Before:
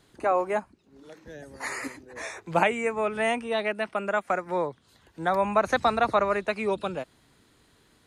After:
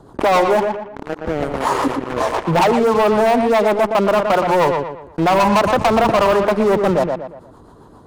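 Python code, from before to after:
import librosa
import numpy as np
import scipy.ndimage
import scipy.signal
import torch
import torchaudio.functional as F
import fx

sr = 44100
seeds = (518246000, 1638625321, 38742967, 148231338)

p1 = fx.high_shelf_res(x, sr, hz=1500.0, db=-14.0, q=3.0)
p2 = fx.rotary(p1, sr, hz=7.5)
p3 = 10.0 ** (-21.0 / 20.0) * np.tanh(p2 / 10.0 ** (-21.0 / 20.0))
p4 = p2 + F.gain(torch.from_numpy(p3), -8.5).numpy()
p5 = fx.leveller(p4, sr, passes=5)
p6 = p5 + fx.echo_filtered(p5, sr, ms=118, feedback_pct=16, hz=3100.0, wet_db=-9, dry=0)
p7 = fx.env_flatten(p6, sr, amount_pct=50)
y = F.gain(torch.from_numpy(p7), -5.5).numpy()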